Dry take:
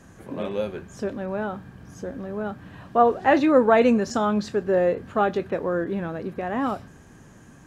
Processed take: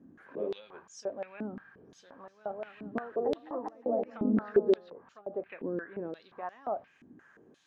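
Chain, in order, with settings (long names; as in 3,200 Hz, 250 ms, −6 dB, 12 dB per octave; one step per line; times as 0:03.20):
treble cut that deepens with the level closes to 350 Hz, closed at −17 dBFS
0:02.29–0:04.90: bouncing-ball delay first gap 210 ms, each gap 0.9×, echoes 5
band-pass on a step sequencer 5.7 Hz 270–5,800 Hz
level +2 dB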